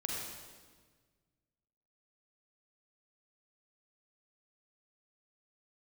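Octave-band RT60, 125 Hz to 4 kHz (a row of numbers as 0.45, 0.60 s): 2.3, 1.9, 1.6, 1.4, 1.4, 1.3 s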